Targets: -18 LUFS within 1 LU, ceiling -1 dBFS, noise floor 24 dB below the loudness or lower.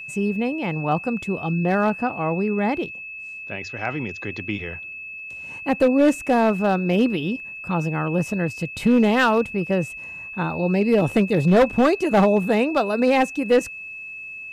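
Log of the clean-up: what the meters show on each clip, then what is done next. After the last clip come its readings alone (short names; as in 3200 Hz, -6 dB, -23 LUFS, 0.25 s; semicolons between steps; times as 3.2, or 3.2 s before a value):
clipped 0.8%; flat tops at -10.5 dBFS; steady tone 2600 Hz; tone level -33 dBFS; loudness -21.5 LUFS; peak -10.5 dBFS; loudness target -18.0 LUFS
-> clip repair -10.5 dBFS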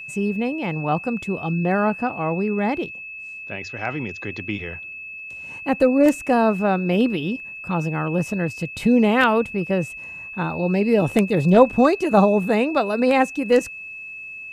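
clipped 0.0%; steady tone 2600 Hz; tone level -33 dBFS
-> notch 2600 Hz, Q 30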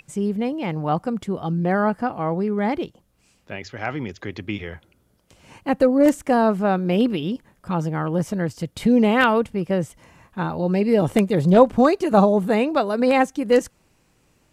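steady tone none; loudness -20.5 LUFS; peak -1.5 dBFS; loudness target -18.0 LUFS
-> gain +2.5 dB; limiter -1 dBFS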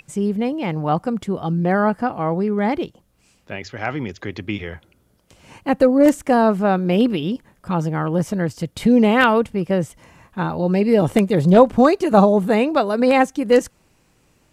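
loudness -18.0 LUFS; peak -1.0 dBFS; noise floor -60 dBFS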